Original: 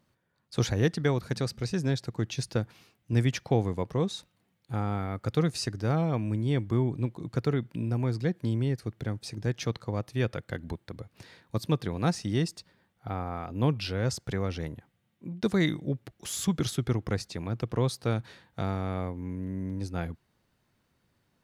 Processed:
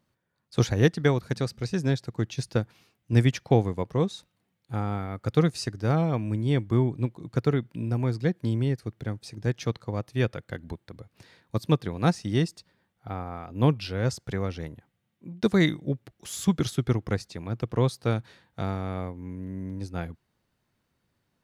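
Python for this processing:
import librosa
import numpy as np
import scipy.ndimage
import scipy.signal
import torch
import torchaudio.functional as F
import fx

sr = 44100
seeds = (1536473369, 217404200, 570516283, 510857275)

y = fx.upward_expand(x, sr, threshold_db=-37.0, expansion=1.5)
y = y * 10.0 ** (5.5 / 20.0)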